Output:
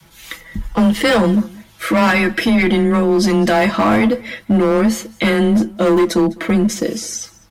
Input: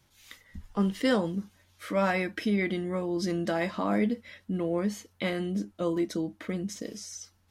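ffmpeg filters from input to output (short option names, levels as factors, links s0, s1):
-filter_complex "[0:a]equalizer=f=5500:w=0.92:g=-4.5,aecho=1:1:6.2:0.6,adynamicequalizer=threshold=0.0126:dfrequency=320:dqfactor=1.3:tfrequency=320:tqfactor=1.3:attack=5:release=100:ratio=0.375:range=2:mode=cutabove:tftype=bell,acrossover=split=1700[s0][s1];[s0]asoftclip=type=hard:threshold=0.0473[s2];[s2][s1]amix=inputs=2:normalize=0,apsyclip=25.1,afreqshift=15,asplit=2[s3][s4];[s4]aecho=0:1:205:0.0708[s5];[s3][s5]amix=inputs=2:normalize=0,volume=0.335"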